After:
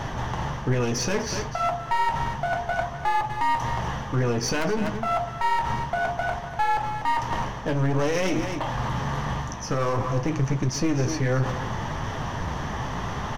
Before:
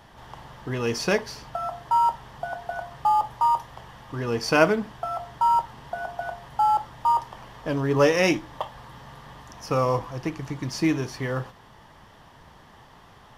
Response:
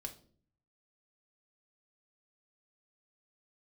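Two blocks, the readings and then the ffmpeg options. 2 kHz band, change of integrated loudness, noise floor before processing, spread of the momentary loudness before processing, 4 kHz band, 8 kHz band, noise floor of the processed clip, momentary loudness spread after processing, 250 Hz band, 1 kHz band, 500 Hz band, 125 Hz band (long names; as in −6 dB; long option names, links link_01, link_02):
+1.0 dB, −1.0 dB, −51 dBFS, 21 LU, +1.5 dB, +5.5 dB, −34 dBFS, 6 LU, +1.0 dB, −1.5 dB, −1.5 dB, +6.5 dB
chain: -filter_complex "[0:a]equalizer=frequency=6100:width_type=o:width=0.3:gain=15,aeval=exprs='(mod(1.58*val(0)+1,2)-1)/1.58':channel_layout=same,areverse,acompressor=mode=upward:threshold=-23dB:ratio=2.5,areverse,bass=frequency=250:gain=5,treble=frequency=4000:gain=-12,aeval=exprs='clip(val(0),-1,0.0376)':channel_layout=same,acontrast=90,asplit=2[link_01][link_02];[link_02]aecho=0:1:245:0.224[link_03];[link_01][link_03]amix=inputs=2:normalize=0,alimiter=limit=-13dB:level=0:latency=1:release=99,flanger=delay=7.3:depth=8.9:regen=-52:speed=0.58:shape=sinusoidal,volume=2dB"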